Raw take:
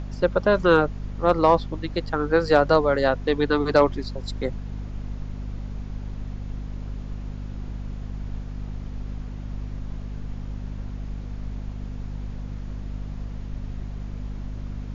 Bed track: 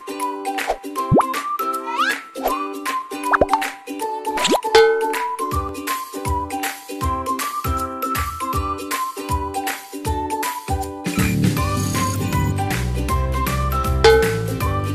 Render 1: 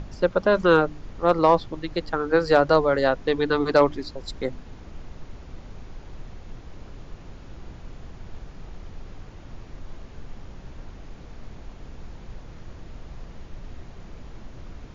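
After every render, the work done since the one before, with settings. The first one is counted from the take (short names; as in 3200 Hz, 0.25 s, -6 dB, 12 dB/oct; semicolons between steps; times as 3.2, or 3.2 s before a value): de-hum 50 Hz, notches 6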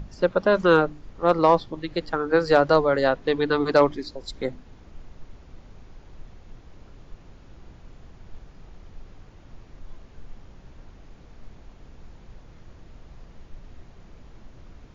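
noise print and reduce 6 dB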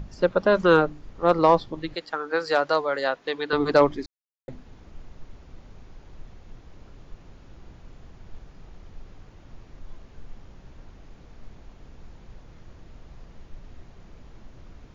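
1.95–3.53 HPF 860 Hz 6 dB/oct; 4.06–4.48 mute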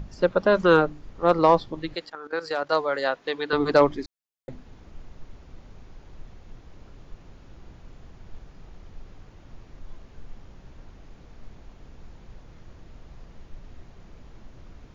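2.09–2.72 level quantiser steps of 13 dB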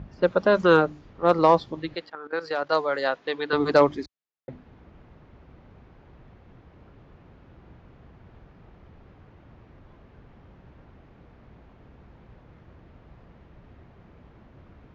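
HPF 61 Hz; low-pass opened by the level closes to 2300 Hz, open at -16.5 dBFS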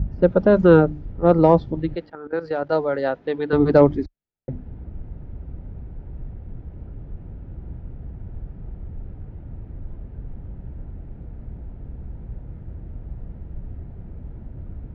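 tilt -4.5 dB/oct; notch 1100 Hz, Q 6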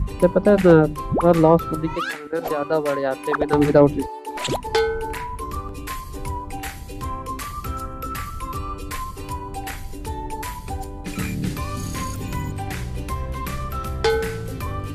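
add bed track -8 dB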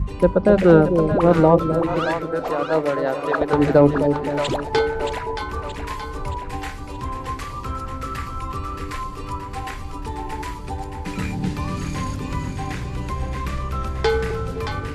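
air absorption 61 m; split-band echo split 620 Hz, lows 0.259 s, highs 0.624 s, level -6.5 dB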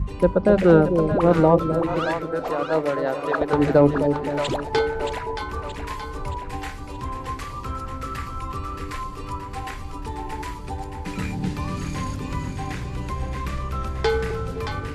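gain -2 dB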